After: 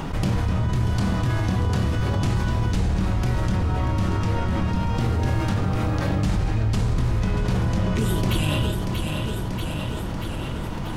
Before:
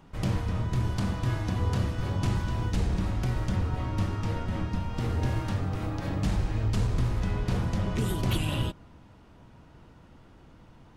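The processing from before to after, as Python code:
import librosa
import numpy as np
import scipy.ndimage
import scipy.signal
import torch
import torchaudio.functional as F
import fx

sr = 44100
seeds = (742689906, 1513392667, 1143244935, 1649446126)

y = fx.doubler(x, sr, ms=27.0, db=-10.5)
y = fx.echo_feedback(y, sr, ms=636, feedback_pct=48, wet_db=-14)
y = fx.env_flatten(y, sr, amount_pct=70)
y = F.gain(torch.from_numpy(y), 2.5).numpy()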